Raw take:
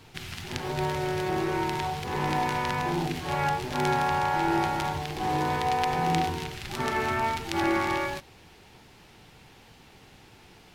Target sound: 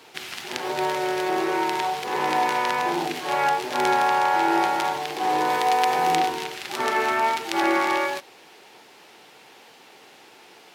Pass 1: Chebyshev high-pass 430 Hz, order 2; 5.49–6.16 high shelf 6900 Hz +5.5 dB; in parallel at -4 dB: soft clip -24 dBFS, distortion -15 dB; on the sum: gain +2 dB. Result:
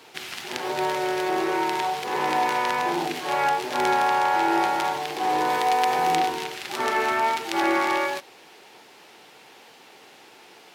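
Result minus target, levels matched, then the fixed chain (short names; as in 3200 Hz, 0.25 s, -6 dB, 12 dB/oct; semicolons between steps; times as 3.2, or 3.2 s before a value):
soft clip: distortion +14 dB
Chebyshev high-pass 430 Hz, order 2; 5.49–6.16 high shelf 6900 Hz +5.5 dB; in parallel at -4 dB: soft clip -13.5 dBFS, distortion -29 dB; on the sum: gain +2 dB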